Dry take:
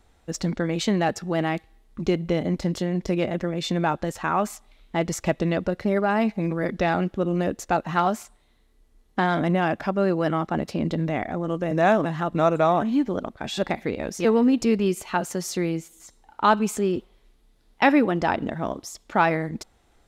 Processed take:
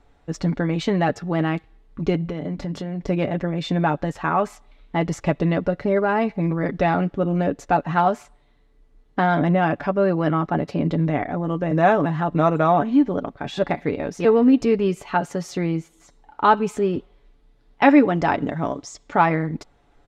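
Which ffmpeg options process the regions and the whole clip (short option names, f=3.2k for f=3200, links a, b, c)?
-filter_complex "[0:a]asettb=1/sr,asplit=3[a][b][c];[a]atrim=end=2.254[d];[b]atrim=start=2.25:end=3.02,asetpts=PTS-STARTPTS,afade=t=in:d=0.004:c=qsin,afade=t=out:st=0.766:d=0.004:c=qsin,bandreject=f=50:t=h:w=6,bandreject=f=100:t=h:w=6,bandreject=f=150:t=h:w=6,bandreject=f=200:t=h:w=6,bandreject=f=250:t=h:w=6,acompressor=threshold=-27dB:ratio=4:attack=3.2:release=140:knee=1:detection=peak[e];[c]atrim=start=3.016[f];[d][e]acrossfade=d=0.004:c1=hsin:c2=qsin[g];[g][f]acrossfade=d=0.004:c1=qsin:c2=hsin,asettb=1/sr,asplit=3[h][i][j];[h]atrim=end=17.894[k];[i]atrim=start=17.89:end=19.16,asetpts=PTS-STARTPTS,afade=t=in:d=0.004:c=qsin,afade=t=out:st=1.266:d=0.004:c=qsin,lowpass=f=7.3k:t=q:w=2.6,equalizer=f=2.1k:w=5.4:g=3[l];[j]atrim=start=19.156[m];[k][l]acrossfade=d=0.004:c1=hsin:c2=qsin[n];[n][m]acrossfade=d=0.004:c1=qsin:c2=hsin,aemphasis=mode=reproduction:type=75fm,aecho=1:1:7:0.45,volume=2dB"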